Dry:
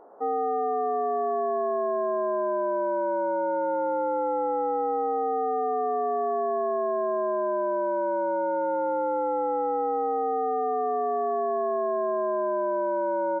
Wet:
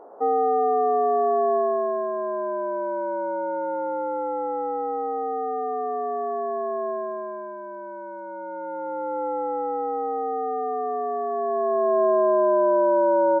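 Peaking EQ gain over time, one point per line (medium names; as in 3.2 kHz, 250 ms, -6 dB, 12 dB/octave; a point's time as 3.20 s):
peaking EQ 530 Hz 2.7 oct
1.55 s +6 dB
2.12 s -1 dB
6.89 s -1 dB
7.57 s -11.5 dB
8.23 s -11.5 dB
9.24 s -0.5 dB
11.29 s -0.5 dB
12.03 s +8 dB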